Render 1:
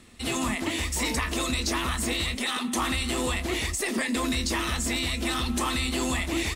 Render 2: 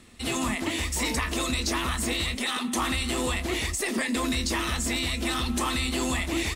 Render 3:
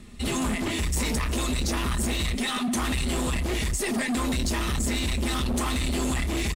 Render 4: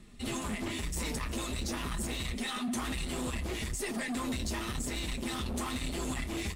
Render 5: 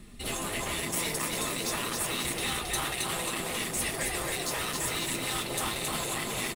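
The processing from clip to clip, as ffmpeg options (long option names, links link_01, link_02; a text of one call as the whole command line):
ffmpeg -i in.wav -af anull out.wav
ffmpeg -i in.wav -filter_complex "[0:a]lowshelf=frequency=230:gain=12,aecho=1:1:4.9:0.38,acrossover=split=6800[link_01][link_02];[link_01]asoftclip=type=hard:threshold=-24dB[link_03];[link_03][link_02]amix=inputs=2:normalize=0" out.wav
ffmpeg -i in.wav -af "flanger=delay=5.7:depth=4.6:regen=-41:speed=1:shape=triangular,volume=-4dB" out.wav
ffmpeg -i in.wav -af "aexciter=amount=2.9:drive=2.1:freq=9600,aecho=1:1:270|540|810|1080|1350|1620|1890:0.668|0.354|0.188|0.0995|0.0527|0.0279|0.0148,afftfilt=real='re*lt(hypot(re,im),0.0891)':imag='im*lt(hypot(re,im),0.0891)':win_size=1024:overlap=0.75,volume=4.5dB" out.wav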